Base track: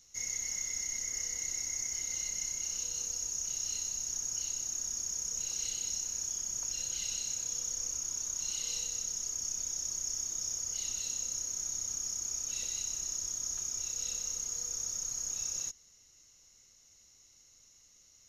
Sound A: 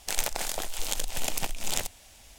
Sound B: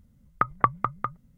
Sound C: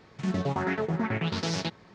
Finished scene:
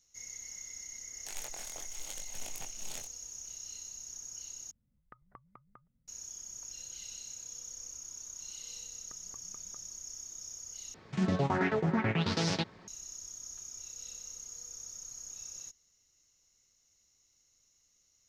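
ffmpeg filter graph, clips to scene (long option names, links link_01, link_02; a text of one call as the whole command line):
ffmpeg -i bed.wav -i cue0.wav -i cue1.wav -i cue2.wav -filter_complex "[2:a]asplit=2[link_01][link_02];[0:a]volume=-9dB[link_03];[1:a]flanger=delay=20:depth=4:speed=0.85[link_04];[link_01]acompressor=threshold=-47dB:ratio=2:attack=15:release=77:knee=1:detection=rms[link_05];[link_02]acompressor=threshold=-39dB:ratio=6:attack=3.2:release=140:knee=1:detection=peak[link_06];[link_03]asplit=3[link_07][link_08][link_09];[link_07]atrim=end=4.714[link_10];[link_05]atrim=end=1.37,asetpts=PTS-STARTPTS,volume=-17.5dB[link_11];[link_08]atrim=start=6.076:end=10.944[link_12];[3:a]atrim=end=1.94,asetpts=PTS-STARTPTS,volume=-1dB[link_13];[link_09]atrim=start=12.876[link_14];[link_04]atrim=end=2.38,asetpts=PTS-STARTPTS,volume=-12dB,afade=type=in:duration=0.004:curve=hsin,afade=type=out:start_time=2.376:duration=0.004:curve=hsin,adelay=1180[link_15];[link_06]atrim=end=1.37,asetpts=PTS-STARTPTS,volume=-16.5dB,afade=type=in:duration=0.004:curve=hsin,afade=type=out:start_time=1.366:duration=0.004:curve=hsin,adelay=8700[link_16];[link_10][link_11]acrossfade=duration=0.004:curve1=hsin:curve2=hsin[link_17];[link_17][link_12]acrossfade=duration=0.004:curve1=hsin:curve2=hsin[link_18];[link_18][link_13]acrossfade=duration=0.004:curve1=hsin:curve2=hsin[link_19];[link_19][link_14]acrossfade=duration=0.004:curve1=hsin:curve2=hsin[link_20];[link_20][link_15][link_16]amix=inputs=3:normalize=0" out.wav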